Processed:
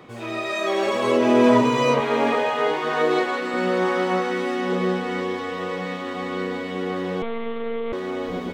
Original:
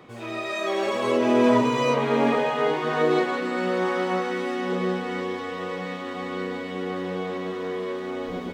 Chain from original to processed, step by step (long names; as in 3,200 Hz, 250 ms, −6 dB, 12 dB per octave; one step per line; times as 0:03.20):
0:02.00–0:03.54: parametric band 73 Hz −13 dB 3 octaves
0:07.22–0:07.93: one-pitch LPC vocoder at 8 kHz 230 Hz
level +3 dB